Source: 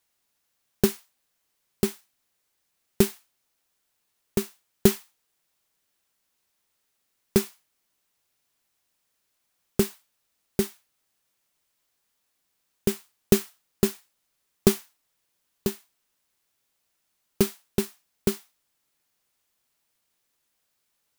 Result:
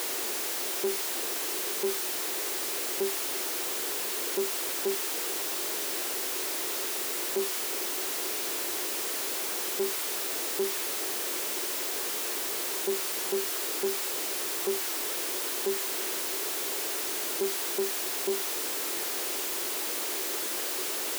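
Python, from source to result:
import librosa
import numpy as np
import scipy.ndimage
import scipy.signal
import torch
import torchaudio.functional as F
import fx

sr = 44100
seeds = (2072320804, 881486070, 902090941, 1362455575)

y = np.sign(x) * np.sqrt(np.mean(np.square(x)))
y = fx.highpass_res(y, sr, hz=370.0, q=3.9)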